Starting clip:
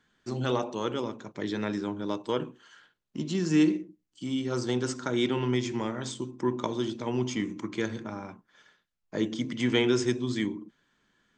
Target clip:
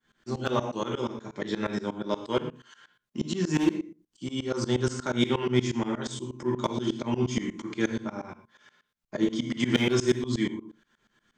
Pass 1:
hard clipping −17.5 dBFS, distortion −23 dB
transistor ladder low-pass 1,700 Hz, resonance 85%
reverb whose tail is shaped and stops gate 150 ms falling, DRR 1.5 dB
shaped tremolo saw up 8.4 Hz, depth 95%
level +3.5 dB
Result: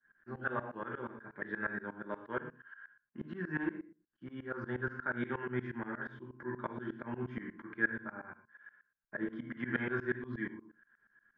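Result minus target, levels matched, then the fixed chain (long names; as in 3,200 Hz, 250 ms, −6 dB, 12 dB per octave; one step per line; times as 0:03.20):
2,000 Hz band +10.5 dB
hard clipping −17.5 dBFS, distortion −23 dB
reverb whose tail is shaped and stops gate 150 ms falling, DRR 1.5 dB
shaped tremolo saw up 8.4 Hz, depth 95%
level +3.5 dB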